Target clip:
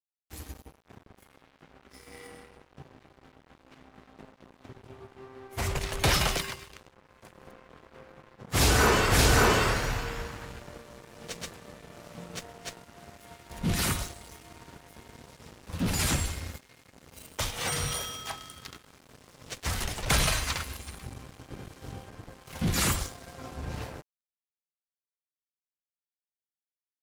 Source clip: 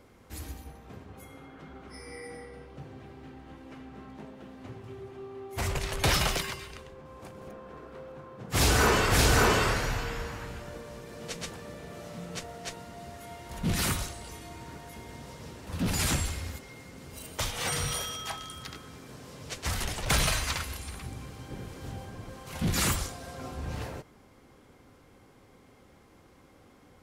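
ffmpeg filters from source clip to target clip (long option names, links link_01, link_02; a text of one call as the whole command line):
ffmpeg -i in.wav -af "aeval=exprs='sgn(val(0))*max(abs(val(0))-0.00562,0)':channel_layout=same,volume=1.5dB" out.wav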